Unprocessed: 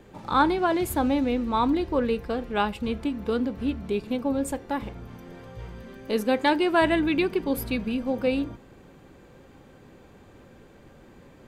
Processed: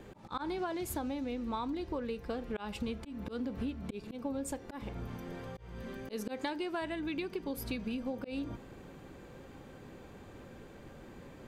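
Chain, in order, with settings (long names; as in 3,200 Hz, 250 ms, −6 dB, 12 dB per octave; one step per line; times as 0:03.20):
dynamic equaliser 5,800 Hz, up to +6 dB, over −51 dBFS, Q 1.4
volume swells 293 ms
downward compressor 20 to 1, threshold −33 dBFS, peak gain reduction 18 dB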